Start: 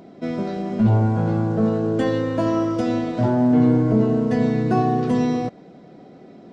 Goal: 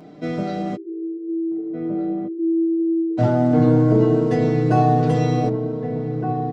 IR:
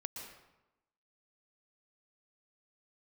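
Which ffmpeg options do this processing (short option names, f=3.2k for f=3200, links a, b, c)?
-filter_complex "[0:a]asplit=3[a][b][c];[a]afade=t=out:st=0.75:d=0.02[d];[b]asuperpass=centerf=360:order=8:qfactor=4.3,afade=t=in:st=0.75:d=0.02,afade=t=out:st=3.17:d=0.02[e];[c]afade=t=in:st=3.17:d=0.02[f];[d][e][f]amix=inputs=3:normalize=0,aecho=1:1:6.6:0.74,asplit=2[g][h];[h]adelay=1516,volume=-6dB,highshelf=f=4k:g=-34.1[i];[g][i]amix=inputs=2:normalize=0"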